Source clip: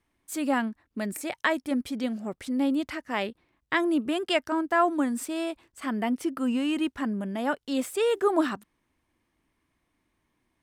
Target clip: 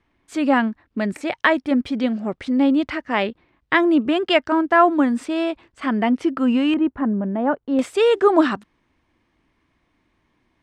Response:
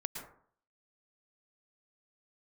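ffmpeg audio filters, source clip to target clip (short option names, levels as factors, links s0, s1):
-af "asetnsamples=n=441:p=0,asendcmd='6.74 lowpass f 1100;7.79 lowpass f 4900',lowpass=3700,volume=2.66"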